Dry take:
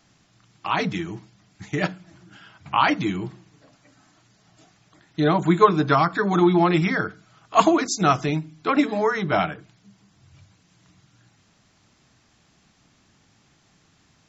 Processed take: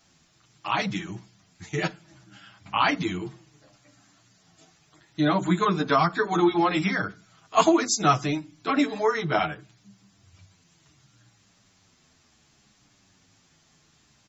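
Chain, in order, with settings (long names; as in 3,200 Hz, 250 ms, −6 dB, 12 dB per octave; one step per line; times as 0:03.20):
high-shelf EQ 4,200 Hz +7 dB
barber-pole flanger 8.6 ms −0.67 Hz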